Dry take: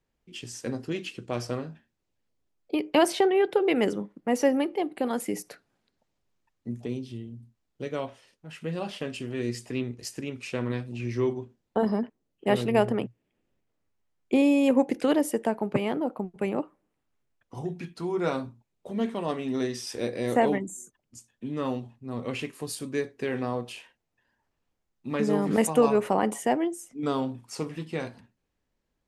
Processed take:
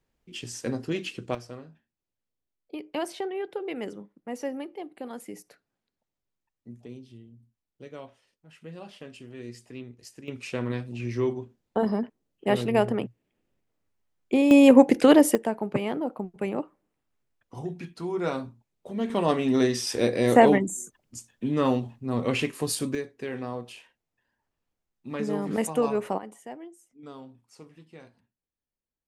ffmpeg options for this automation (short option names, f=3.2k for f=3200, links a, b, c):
-af "asetnsamples=n=441:p=0,asendcmd='1.35 volume volume -10dB;10.28 volume volume 0dB;14.51 volume volume 7.5dB;15.35 volume volume -1dB;19.1 volume volume 6.5dB;22.95 volume volume -4dB;26.18 volume volume -16dB',volume=2dB"